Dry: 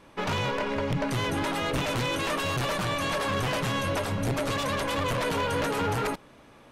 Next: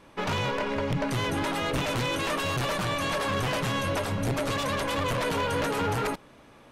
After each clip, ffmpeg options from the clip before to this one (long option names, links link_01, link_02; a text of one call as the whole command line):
ffmpeg -i in.wav -af anull out.wav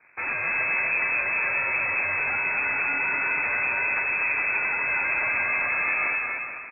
ffmpeg -i in.wav -af "aeval=exprs='0.0841*(cos(1*acos(clip(val(0)/0.0841,-1,1)))-cos(1*PI/2))+0.015*(cos(3*acos(clip(val(0)/0.0841,-1,1)))-cos(3*PI/2))+0.00531*(cos(5*acos(clip(val(0)/0.0841,-1,1)))-cos(5*PI/2))+0.00211*(cos(7*acos(clip(val(0)/0.0841,-1,1)))-cos(7*PI/2))+0.0237*(cos(8*acos(clip(val(0)/0.0841,-1,1)))-cos(8*PI/2))':channel_layout=same,lowpass=frequency=2200:width_type=q:width=0.5098,lowpass=frequency=2200:width_type=q:width=0.6013,lowpass=frequency=2200:width_type=q:width=0.9,lowpass=frequency=2200:width_type=q:width=2.563,afreqshift=-2600,aecho=1:1:240|432|585.6|708.5|806.8:0.631|0.398|0.251|0.158|0.1" out.wav